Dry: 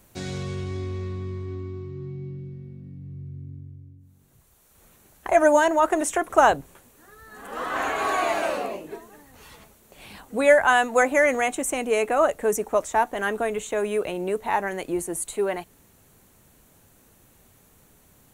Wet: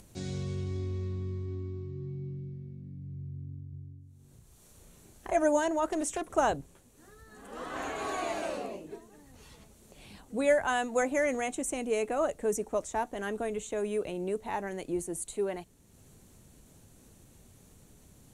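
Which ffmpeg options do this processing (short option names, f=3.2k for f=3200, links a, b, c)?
-filter_complex "[0:a]asettb=1/sr,asplit=3[a][b][c];[a]atrim=end=3.694[d];[b]atrim=start=3.69:end=5.32,asetpts=PTS-STARTPTS,afade=t=in:d=0.004:c=qsin,afade=t=out:st=1.626:d=0.004:c=qsin,asplit=2[e][f];[f]adelay=35,volume=-2.5dB[g];[e][g]amix=inputs=2:normalize=0,atrim=end_sample=71883[h];[c]atrim=start=5.316[i];[d][h]acrossfade=d=0.004:c1=hsin:c2=qsin[j];[j][i]acrossfade=d=0.004:c1=qsin:c2=hsin,asettb=1/sr,asplit=3[k][l][m];[k]atrim=end=5.914[n];[l]atrim=start=5.91:end=6.36,asetpts=PTS-STARTPTS,afade=t=in:d=0.004:c=qsin,afade=t=out:st=0.446:d=0.004:c=qsin,asoftclip=type=hard:threshold=-19.5dB[o];[m]atrim=start=6.356[p];[n][o]acrossfade=d=0.004:c1=hsin:c2=qsin[q];[q][p]acrossfade=d=0.004:c1=qsin:c2=hsin,lowpass=8.6k,equalizer=f=1.4k:w=0.4:g=-10,acompressor=mode=upward:threshold=-46dB:ratio=2.5,volume=-2.5dB"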